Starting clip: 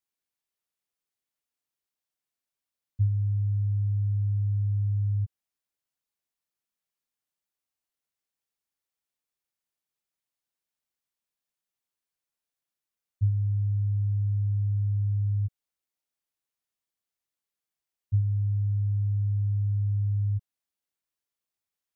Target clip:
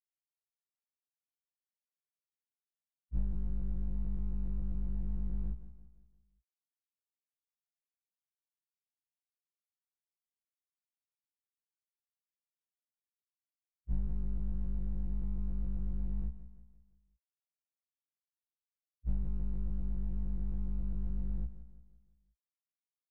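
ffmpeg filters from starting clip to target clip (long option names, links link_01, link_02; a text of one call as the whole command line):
ffmpeg -i in.wav -filter_complex "[0:a]aeval=exprs='if(lt(val(0),0),0.251*val(0),val(0))':channel_layout=same,highpass=frequency=120:poles=1,afftfilt=real='re*gte(hypot(re,im),0.0158)':imag='im*gte(hypot(re,im),0.0158)':win_size=1024:overlap=0.75,adynamicequalizer=threshold=0.00398:dfrequency=200:dqfactor=0.88:tfrequency=200:tqfactor=0.88:attack=5:release=100:ratio=0.375:range=2.5:mode=cutabove:tftype=bell,asplit=2[link_01][link_02];[link_02]alimiter=level_in=8dB:limit=-24dB:level=0:latency=1:release=12,volume=-8dB,volume=0.5dB[link_03];[link_01][link_03]amix=inputs=2:normalize=0,asetrate=22050,aresample=44100,atempo=2,aeval=exprs='clip(val(0),-1,0.0282)':channel_layout=same,asetrate=41895,aresample=44100,aecho=1:1:172|344|516|688|860:0.224|0.103|0.0474|0.0218|0.01,afftfilt=real='re*1.73*eq(mod(b,3),0)':imag='im*1.73*eq(mod(b,3),0)':win_size=2048:overlap=0.75,volume=3.5dB" out.wav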